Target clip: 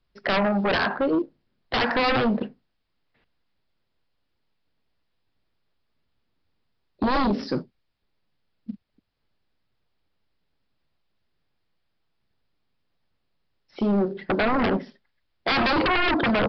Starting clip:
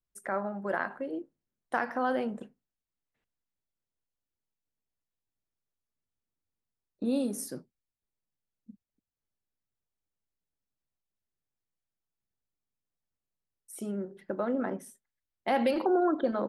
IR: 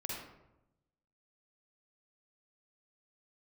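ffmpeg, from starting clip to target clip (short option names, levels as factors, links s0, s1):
-af "acrusher=bits=8:mode=log:mix=0:aa=0.000001,aeval=exprs='0.168*sin(PI/2*5.62*val(0)/0.168)':c=same,aresample=11025,aresample=44100,volume=0.75"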